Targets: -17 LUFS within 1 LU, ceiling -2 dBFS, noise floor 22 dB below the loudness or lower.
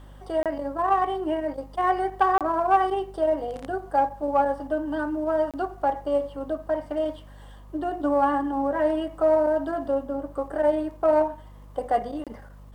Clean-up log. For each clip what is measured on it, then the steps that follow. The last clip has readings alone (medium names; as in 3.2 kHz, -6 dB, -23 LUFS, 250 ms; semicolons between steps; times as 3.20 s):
dropouts 4; longest dropout 27 ms; hum 50 Hz; highest harmonic 250 Hz; hum level -43 dBFS; loudness -25.5 LUFS; peak level -10.0 dBFS; loudness target -17.0 LUFS
-> interpolate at 0.43/2.38/5.51/12.24 s, 27 ms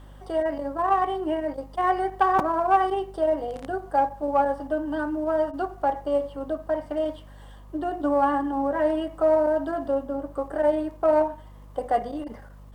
dropouts 0; hum 50 Hz; highest harmonic 250 Hz; hum level -43 dBFS
-> de-hum 50 Hz, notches 5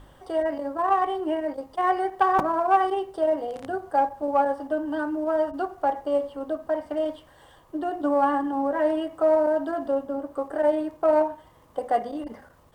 hum not found; loudness -25.5 LUFS; peak level -7.5 dBFS; loudness target -17.0 LUFS
-> trim +8.5 dB; peak limiter -2 dBFS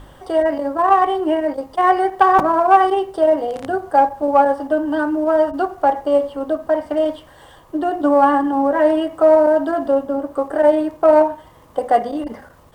loudness -17.0 LUFS; peak level -2.0 dBFS; noise floor -46 dBFS